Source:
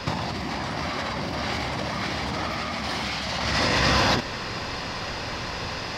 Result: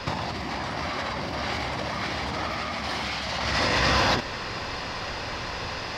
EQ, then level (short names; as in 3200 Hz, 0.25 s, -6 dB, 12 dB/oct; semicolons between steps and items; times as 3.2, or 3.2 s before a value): bell 180 Hz -4 dB 1.8 oct; high shelf 5400 Hz -4.5 dB; 0.0 dB